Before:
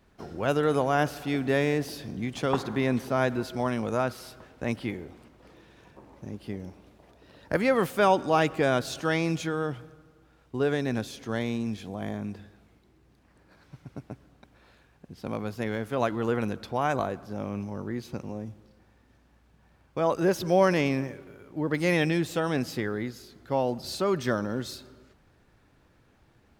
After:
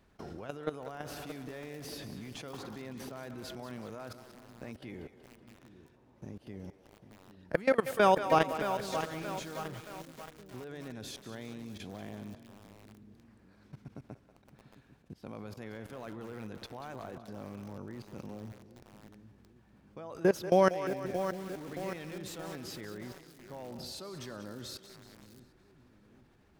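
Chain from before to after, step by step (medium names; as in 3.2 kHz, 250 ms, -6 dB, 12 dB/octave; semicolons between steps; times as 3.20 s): level held to a coarse grid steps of 22 dB; two-band feedback delay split 380 Hz, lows 797 ms, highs 188 ms, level -12 dB; bit-crushed delay 624 ms, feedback 55%, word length 7-bit, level -9.5 dB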